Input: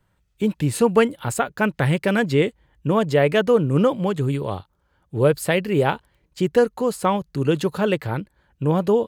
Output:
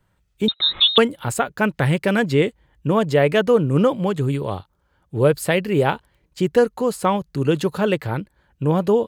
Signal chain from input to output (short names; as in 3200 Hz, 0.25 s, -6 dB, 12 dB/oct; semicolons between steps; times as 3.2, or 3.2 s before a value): 0.48–0.98 inverted band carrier 3900 Hz; gain +1 dB